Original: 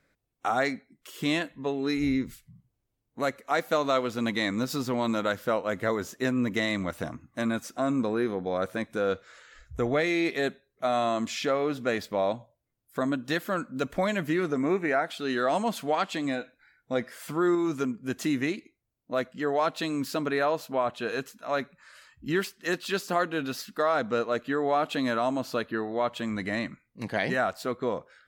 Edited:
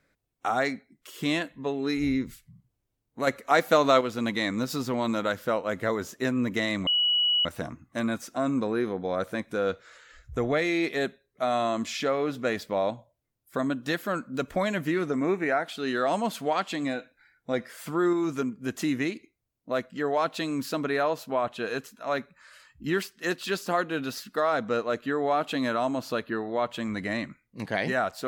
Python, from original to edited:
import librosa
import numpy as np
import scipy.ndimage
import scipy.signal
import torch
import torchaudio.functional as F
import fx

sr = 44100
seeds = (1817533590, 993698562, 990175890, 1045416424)

y = fx.edit(x, sr, fx.clip_gain(start_s=3.27, length_s=0.74, db=5.0),
    fx.insert_tone(at_s=6.87, length_s=0.58, hz=2930.0, db=-20.5), tone=tone)